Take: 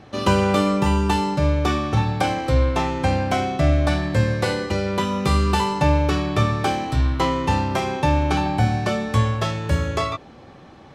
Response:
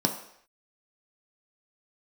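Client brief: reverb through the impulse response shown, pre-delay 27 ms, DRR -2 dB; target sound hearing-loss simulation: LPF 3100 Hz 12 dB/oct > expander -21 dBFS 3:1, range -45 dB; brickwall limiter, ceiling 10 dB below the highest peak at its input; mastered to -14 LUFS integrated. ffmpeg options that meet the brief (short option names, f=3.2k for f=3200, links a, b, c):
-filter_complex "[0:a]alimiter=limit=-15.5dB:level=0:latency=1,asplit=2[a][b];[1:a]atrim=start_sample=2205,adelay=27[c];[b][c]afir=irnorm=-1:irlink=0,volume=-7.5dB[d];[a][d]amix=inputs=2:normalize=0,lowpass=3.1k,agate=range=-45dB:threshold=-21dB:ratio=3,volume=1dB"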